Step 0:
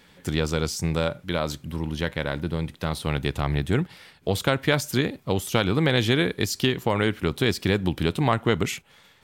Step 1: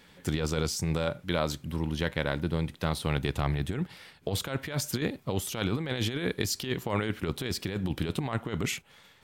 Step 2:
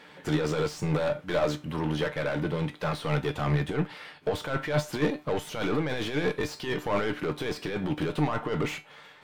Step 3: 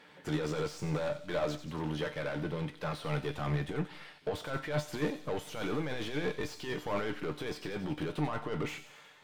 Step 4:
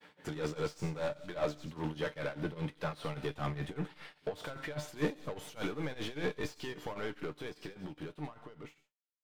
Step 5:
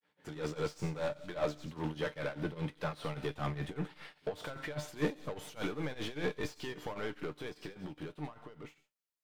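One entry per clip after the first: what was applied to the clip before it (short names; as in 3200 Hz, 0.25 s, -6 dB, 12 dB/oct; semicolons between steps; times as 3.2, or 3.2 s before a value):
negative-ratio compressor -24 dBFS, ratio -0.5; gain -4 dB
overdrive pedal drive 29 dB, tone 1200 Hz, clips at -11.5 dBFS; resonator 150 Hz, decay 0.23 s, harmonics all, mix 70%; upward expander 1.5:1, over -36 dBFS; gain +3 dB
thin delay 90 ms, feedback 65%, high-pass 3600 Hz, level -8.5 dB; on a send at -20 dB: reverb RT60 0.40 s, pre-delay 70 ms; on the sum: gain -6.5 dB
ending faded out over 2.68 s; tremolo triangle 5 Hz, depth 90%; expander -60 dBFS; gain +1.5 dB
opening faded in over 0.54 s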